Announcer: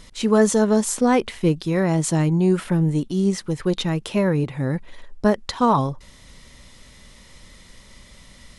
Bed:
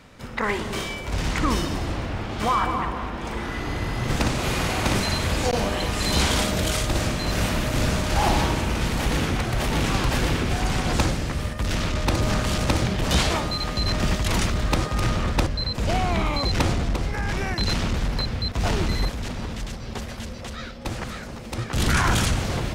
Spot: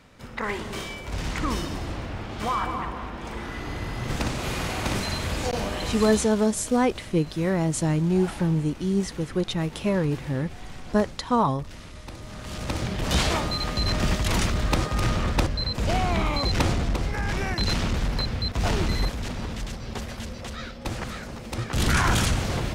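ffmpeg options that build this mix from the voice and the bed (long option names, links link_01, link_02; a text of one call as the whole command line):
ffmpeg -i stem1.wav -i stem2.wav -filter_complex "[0:a]adelay=5700,volume=-4dB[link_01];[1:a]volume=12.5dB,afade=type=out:start_time=5.93:duration=0.36:silence=0.211349,afade=type=in:start_time=12.32:duration=1:silence=0.141254[link_02];[link_01][link_02]amix=inputs=2:normalize=0" out.wav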